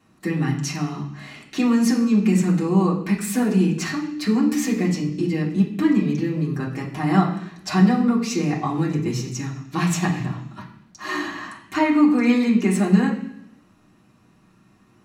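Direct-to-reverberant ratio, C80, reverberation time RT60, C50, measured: -5.5 dB, 10.0 dB, 0.70 s, 7.5 dB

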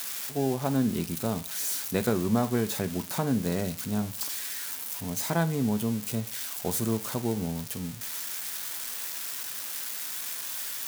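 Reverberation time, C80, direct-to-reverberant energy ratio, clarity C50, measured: 0.40 s, 23.5 dB, 11.0 dB, 18.0 dB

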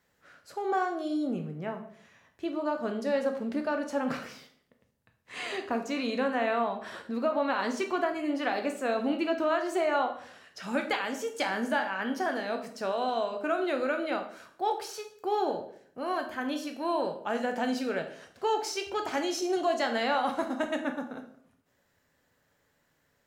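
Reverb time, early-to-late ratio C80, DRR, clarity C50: 0.60 s, 13.5 dB, 4.5 dB, 9.5 dB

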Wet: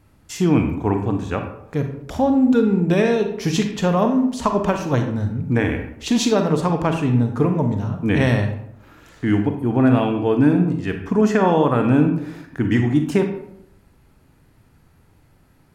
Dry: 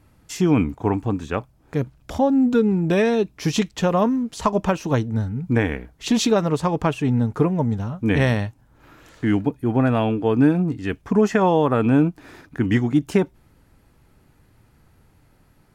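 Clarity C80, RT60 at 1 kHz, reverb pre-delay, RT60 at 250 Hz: 10.0 dB, 0.70 s, 34 ms, 0.80 s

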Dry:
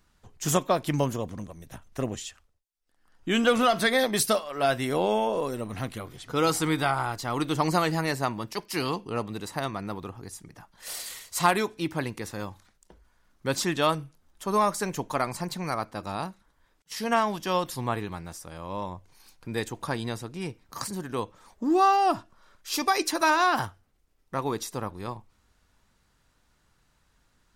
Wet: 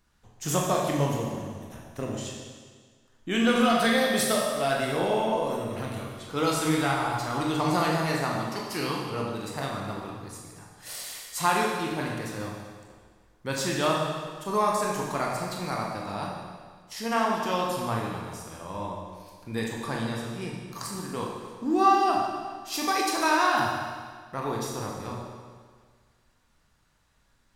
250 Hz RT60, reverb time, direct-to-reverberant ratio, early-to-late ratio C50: 1.7 s, 1.7 s, -2.0 dB, 1.5 dB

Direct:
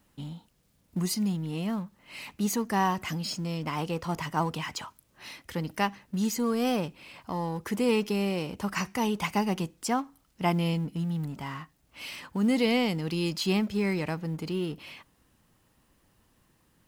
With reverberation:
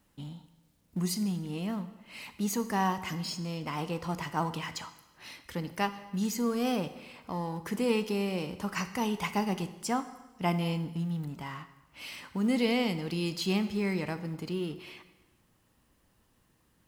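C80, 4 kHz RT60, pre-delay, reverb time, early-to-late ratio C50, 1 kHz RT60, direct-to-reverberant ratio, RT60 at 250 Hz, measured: 15.0 dB, 1.0 s, 6 ms, 1.1 s, 13.0 dB, 1.1 s, 10.5 dB, 1.2 s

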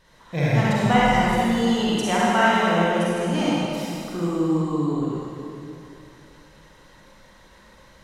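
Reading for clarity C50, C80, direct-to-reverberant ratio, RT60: -6.0 dB, -3.0 dB, -8.0 dB, 2.7 s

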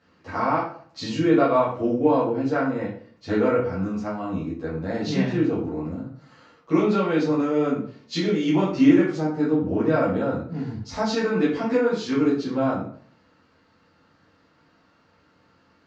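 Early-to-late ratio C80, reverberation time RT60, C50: 9.0 dB, 0.50 s, 4.5 dB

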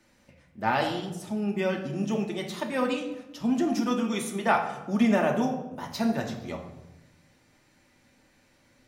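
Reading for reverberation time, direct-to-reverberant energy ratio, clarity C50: 0.95 s, 1.0 dB, 7.5 dB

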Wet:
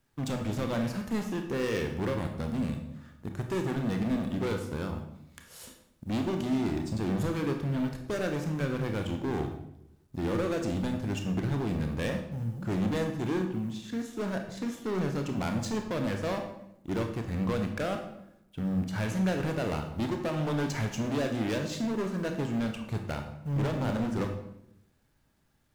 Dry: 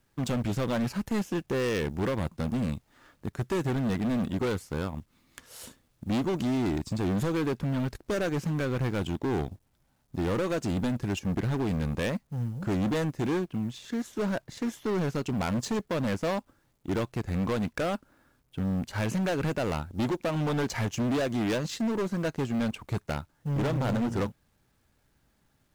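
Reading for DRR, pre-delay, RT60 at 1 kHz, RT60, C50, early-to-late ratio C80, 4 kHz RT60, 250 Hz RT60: 4.0 dB, 23 ms, 0.75 s, 0.80 s, 6.5 dB, 9.5 dB, 0.60 s, 1.0 s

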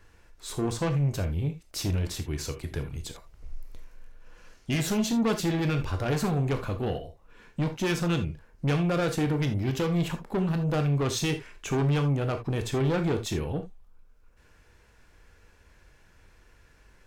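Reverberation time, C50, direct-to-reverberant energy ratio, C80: no single decay rate, 11.5 dB, 6.5 dB, 19.5 dB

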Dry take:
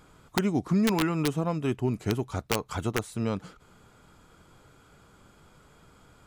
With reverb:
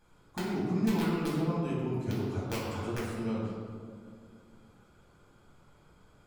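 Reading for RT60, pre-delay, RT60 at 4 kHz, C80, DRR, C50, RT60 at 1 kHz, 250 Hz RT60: 2.2 s, 3 ms, 1.1 s, 1.5 dB, -7.5 dB, -1.0 dB, 1.8 s, 2.7 s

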